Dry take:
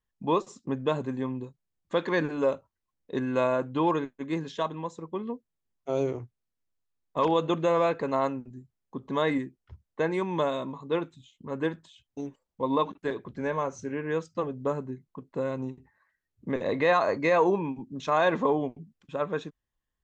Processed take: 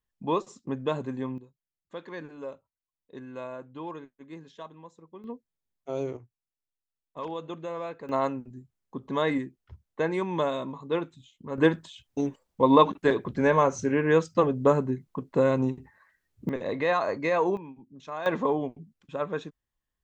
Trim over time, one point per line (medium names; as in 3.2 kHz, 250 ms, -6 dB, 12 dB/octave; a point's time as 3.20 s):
-1.5 dB
from 1.38 s -13 dB
from 5.24 s -4 dB
from 6.17 s -11 dB
from 8.09 s 0 dB
from 11.58 s +8 dB
from 16.49 s -2.5 dB
from 17.57 s -11.5 dB
from 18.26 s -1 dB